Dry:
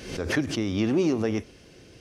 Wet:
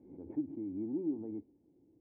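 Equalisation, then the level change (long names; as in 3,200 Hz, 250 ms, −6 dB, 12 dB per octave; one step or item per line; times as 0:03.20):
formant resonators in series u
high-pass filter 58 Hz
−8.0 dB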